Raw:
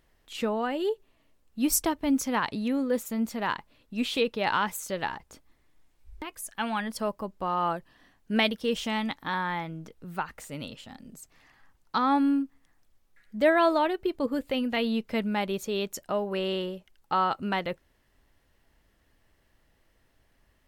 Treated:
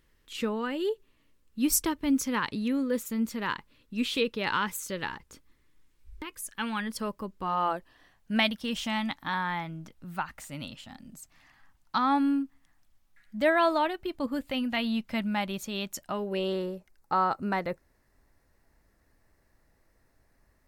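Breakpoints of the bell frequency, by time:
bell -14.5 dB 0.43 oct
7.4 s 710 Hz
7.75 s 130 Hz
8.41 s 440 Hz
16.1 s 440 Hz
16.56 s 3100 Hz

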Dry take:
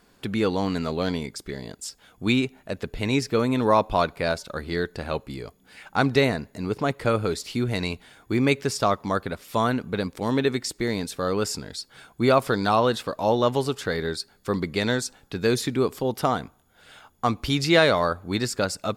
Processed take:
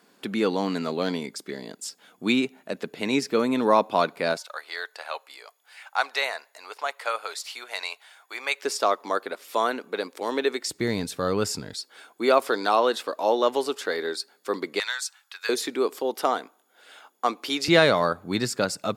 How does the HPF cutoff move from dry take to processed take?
HPF 24 dB/oct
190 Hz
from 4.37 s 690 Hz
from 8.63 s 330 Hz
from 10.7 s 81 Hz
from 11.74 s 300 Hz
from 14.8 s 1100 Hz
from 15.49 s 310 Hz
from 17.68 s 120 Hz

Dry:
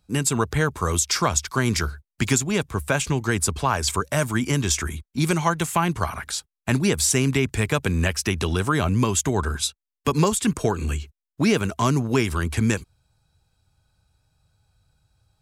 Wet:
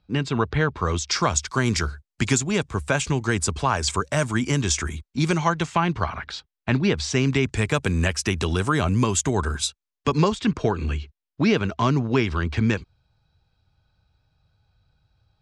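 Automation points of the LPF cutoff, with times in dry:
LPF 24 dB/oct
0.71 s 4300 Hz
1.4 s 8200 Hz
4.95 s 8200 Hz
6.18 s 4400 Hz
6.89 s 4400 Hz
7.75 s 9100 Hz
9.65 s 9100 Hz
10.39 s 4900 Hz

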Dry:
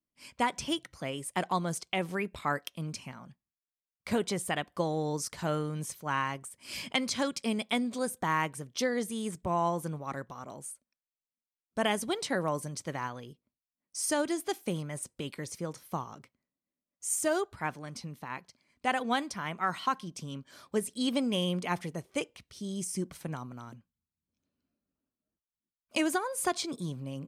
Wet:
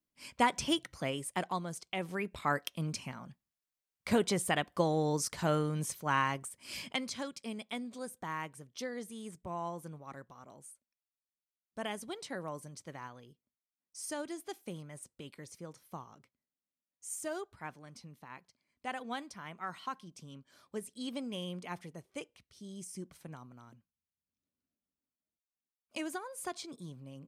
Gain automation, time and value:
1.07 s +1 dB
1.71 s -8 dB
2.67 s +1 dB
6.44 s +1 dB
7.29 s -10 dB

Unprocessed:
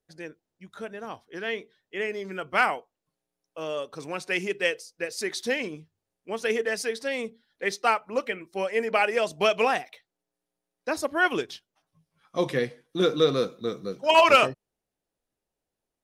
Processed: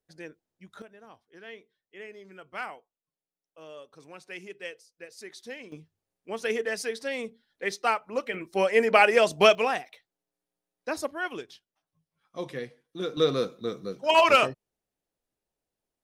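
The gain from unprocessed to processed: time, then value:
-3 dB
from 0.82 s -13.5 dB
from 5.72 s -2.5 dB
from 8.34 s +4.5 dB
from 9.55 s -3 dB
from 11.11 s -9.5 dB
from 13.17 s -2 dB

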